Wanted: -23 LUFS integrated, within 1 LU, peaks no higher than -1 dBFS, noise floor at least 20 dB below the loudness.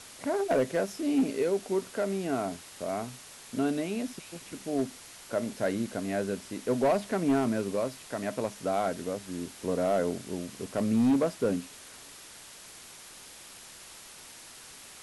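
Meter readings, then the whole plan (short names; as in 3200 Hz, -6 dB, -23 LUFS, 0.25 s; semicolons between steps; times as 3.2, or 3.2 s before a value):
clipped 0.7%; flat tops at -19.5 dBFS; noise floor -49 dBFS; noise floor target -51 dBFS; loudness -30.5 LUFS; peak -19.5 dBFS; loudness target -23.0 LUFS
-> clip repair -19.5 dBFS; noise print and reduce 6 dB; gain +7.5 dB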